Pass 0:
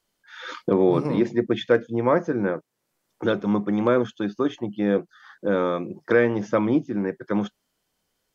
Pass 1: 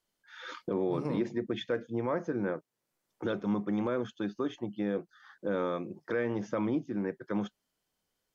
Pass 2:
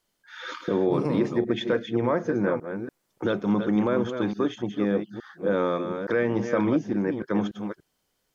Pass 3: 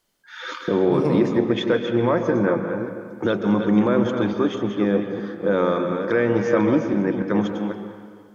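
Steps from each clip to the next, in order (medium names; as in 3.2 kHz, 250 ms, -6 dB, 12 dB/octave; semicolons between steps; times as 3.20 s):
peak limiter -14 dBFS, peak gain reduction 6.5 dB; trim -7.5 dB
chunks repeated in reverse 289 ms, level -7.5 dB; trim +7 dB
reverberation RT60 1.8 s, pre-delay 118 ms, DRR 6.5 dB; trim +4 dB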